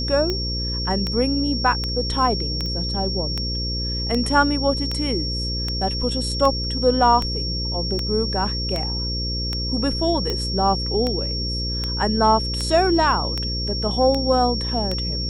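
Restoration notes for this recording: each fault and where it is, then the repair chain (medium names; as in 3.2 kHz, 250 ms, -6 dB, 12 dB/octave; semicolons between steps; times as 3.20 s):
buzz 60 Hz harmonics 9 -27 dBFS
tick 78 rpm -11 dBFS
whine 5.5 kHz -26 dBFS
2.66 s: pop -19 dBFS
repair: de-click; de-hum 60 Hz, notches 9; band-stop 5.5 kHz, Q 30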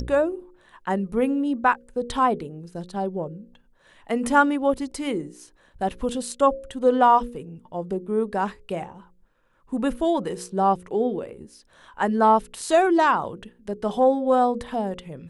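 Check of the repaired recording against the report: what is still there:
nothing left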